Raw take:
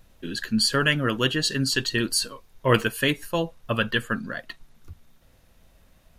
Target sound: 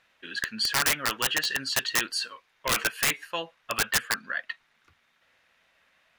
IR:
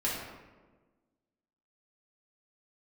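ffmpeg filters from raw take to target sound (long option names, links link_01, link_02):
-af "bandpass=frequency=2000:width_type=q:width=1.4:csg=0,aeval=exprs='(mod(11.9*val(0)+1,2)-1)/11.9':channel_layout=same,volume=5dB"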